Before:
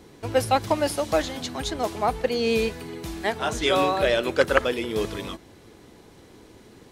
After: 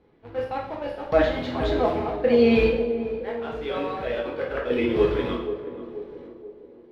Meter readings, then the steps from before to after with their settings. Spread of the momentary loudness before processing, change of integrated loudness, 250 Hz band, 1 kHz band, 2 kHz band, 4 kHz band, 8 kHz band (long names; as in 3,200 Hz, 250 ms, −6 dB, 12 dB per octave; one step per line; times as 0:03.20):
10 LU, 0.0 dB, +4.0 dB, −4.5 dB, −4.0 dB, −7.5 dB, below −20 dB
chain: reverb reduction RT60 0.56 s
parametric band 460 Hz +3.5 dB 0.3 octaves
transient designer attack −6 dB, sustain 0 dB
gate pattern ".....xxxx.xx...." 67 BPM −12 dB
in parallel at −4 dB: bit reduction 6 bits
on the sum: high-frequency loss of the air 400 metres
on a send: feedback echo with a band-pass in the loop 482 ms, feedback 53%, band-pass 400 Hz, level −9.5 dB
on the sum: coupled-rooms reverb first 0.63 s, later 2.1 s, from −18 dB, DRR −2.5 dB